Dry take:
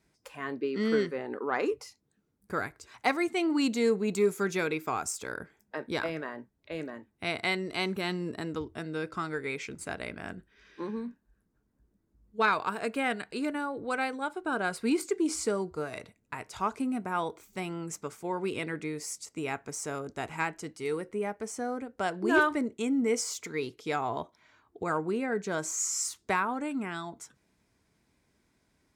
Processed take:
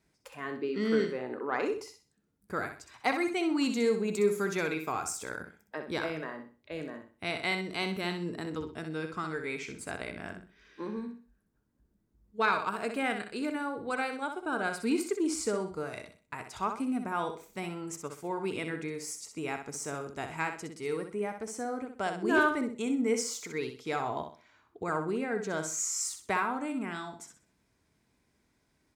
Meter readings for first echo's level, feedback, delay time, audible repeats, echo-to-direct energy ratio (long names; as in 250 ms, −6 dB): −7.5 dB, 31%, 63 ms, 3, −7.0 dB